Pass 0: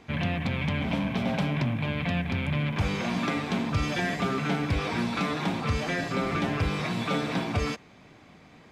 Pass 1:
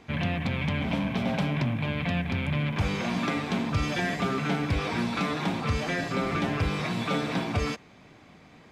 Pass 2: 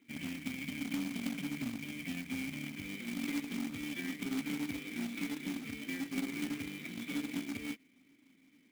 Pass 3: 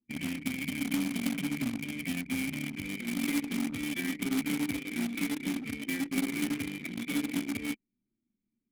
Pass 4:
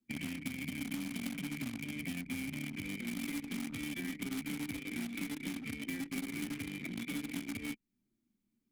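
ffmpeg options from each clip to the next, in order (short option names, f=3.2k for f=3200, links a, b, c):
-af anull
-filter_complex "[0:a]asplit=3[a][b][c];[a]bandpass=f=270:t=q:w=8,volume=0dB[d];[b]bandpass=f=2.29k:t=q:w=8,volume=-6dB[e];[c]bandpass=f=3.01k:t=q:w=8,volume=-9dB[f];[d][e][f]amix=inputs=3:normalize=0,aeval=exprs='0.0531*(cos(1*acos(clip(val(0)/0.0531,-1,1)))-cos(1*PI/2))+0.00299*(cos(3*acos(clip(val(0)/0.0531,-1,1)))-cos(3*PI/2))+0.00168*(cos(7*acos(clip(val(0)/0.0531,-1,1)))-cos(7*PI/2))':c=same,acrusher=bits=2:mode=log:mix=0:aa=0.000001,volume=1dB"
-af "anlmdn=0.0398,equalizer=f=11k:w=1.4:g=8,volume=6dB"
-filter_complex "[0:a]acrossover=split=160|1100[a][b][c];[a]acompressor=threshold=-49dB:ratio=4[d];[b]acompressor=threshold=-45dB:ratio=4[e];[c]acompressor=threshold=-46dB:ratio=4[f];[d][e][f]amix=inputs=3:normalize=0,volume=2.5dB"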